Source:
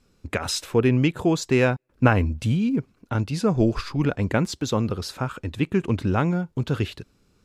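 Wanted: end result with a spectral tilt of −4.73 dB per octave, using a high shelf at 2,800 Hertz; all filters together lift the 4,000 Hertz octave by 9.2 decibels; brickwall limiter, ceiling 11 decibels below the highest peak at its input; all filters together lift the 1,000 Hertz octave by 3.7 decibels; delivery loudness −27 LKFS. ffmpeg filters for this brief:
ffmpeg -i in.wav -af "equalizer=frequency=1000:width_type=o:gain=3.5,highshelf=frequency=2800:gain=7.5,equalizer=frequency=4000:width_type=o:gain=5,volume=-3.5dB,alimiter=limit=-15dB:level=0:latency=1" out.wav

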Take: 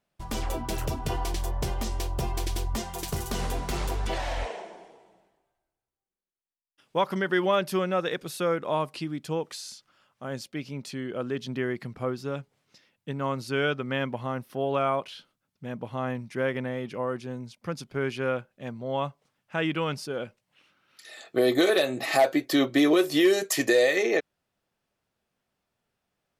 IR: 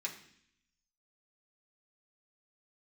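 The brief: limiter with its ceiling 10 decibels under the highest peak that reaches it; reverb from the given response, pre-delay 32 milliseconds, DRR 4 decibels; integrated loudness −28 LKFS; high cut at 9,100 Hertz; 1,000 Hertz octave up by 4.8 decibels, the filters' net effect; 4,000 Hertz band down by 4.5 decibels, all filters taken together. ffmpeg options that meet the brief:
-filter_complex "[0:a]lowpass=9100,equalizer=frequency=1000:width_type=o:gain=6.5,equalizer=frequency=4000:width_type=o:gain=-6,alimiter=limit=-17.5dB:level=0:latency=1,asplit=2[link_01][link_02];[1:a]atrim=start_sample=2205,adelay=32[link_03];[link_02][link_03]afir=irnorm=-1:irlink=0,volume=-4.5dB[link_04];[link_01][link_04]amix=inputs=2:normalize=0,volume=1dB"

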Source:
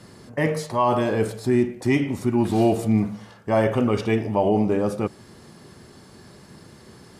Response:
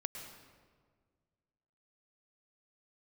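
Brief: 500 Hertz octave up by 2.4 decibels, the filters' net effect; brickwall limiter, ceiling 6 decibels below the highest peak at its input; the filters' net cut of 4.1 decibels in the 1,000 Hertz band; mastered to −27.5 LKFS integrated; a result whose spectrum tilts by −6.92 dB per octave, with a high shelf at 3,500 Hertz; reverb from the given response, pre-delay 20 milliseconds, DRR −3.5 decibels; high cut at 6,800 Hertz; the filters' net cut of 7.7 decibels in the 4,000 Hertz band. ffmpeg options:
-filter_complex "[0:a]lowpass=6800,equalizer=frequency=500:width_type=o:gain=5,equalizer=frequency=1000:width_type=o:gain=-7,highshelf=frequency=3500:gain=-6,equalizer=frequency=4000:width_type=o:gain=-6,alimiter=limit=-14dB:level=0:latency=1,asplit=2[link_01][link_02];[1:a]atrim=start_sample=2205,adelay=20[link_03];[link_02][link_03]afir=irnorm=-1:irlink=0,volume=4dB[link_04];[link_01][link_04]amix=inputs=2:normalize=0,volume=-8.5dB"

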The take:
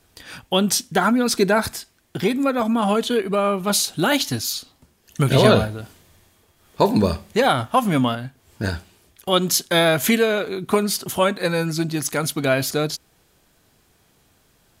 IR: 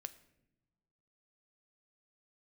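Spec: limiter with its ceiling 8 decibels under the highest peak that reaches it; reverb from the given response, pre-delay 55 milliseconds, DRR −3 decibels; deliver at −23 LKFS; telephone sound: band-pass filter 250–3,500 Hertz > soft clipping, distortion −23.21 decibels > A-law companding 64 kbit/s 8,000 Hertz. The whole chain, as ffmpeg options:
-filter_complex "[0:a]alimiter=limit=-9.5dB:level=0:latency=1,asplit=2[link_01][link_02];[1:a]atrim=start_sample=2205,adelay=55[link_03];[link_02][link_03]afir=irnorm=-1:irlink=0,volume=7dB[link_04];[link_01][link_04]amix=inputs=2:normalize=0,highpass=250,lowpass=3500,asoftclip=threshold=-5.5dB,volume=-3.5dB" -ar 8000 -c:a pcm_alaw

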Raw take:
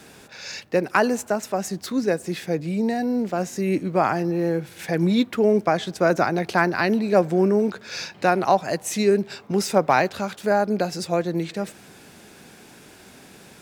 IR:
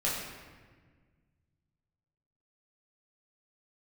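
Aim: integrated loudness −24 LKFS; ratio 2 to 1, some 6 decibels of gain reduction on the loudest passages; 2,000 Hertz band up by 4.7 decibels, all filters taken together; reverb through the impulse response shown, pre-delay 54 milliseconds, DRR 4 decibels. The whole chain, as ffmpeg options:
-filter_complex "[0:a]equalizer=frequency=2000:width_type=o:gain=6.5,acompressor=threshold=-22dB:ratio=2,asplit=2[link_01][link_02];[1:a]atrim=start_sample=2205,adelay=54[link_03];[link_02][link_03]afir=irnorm=-1:irlink=0,volume=-12dB[link_04];[link_01][link_04]amix=inputs=2:normalize=0"

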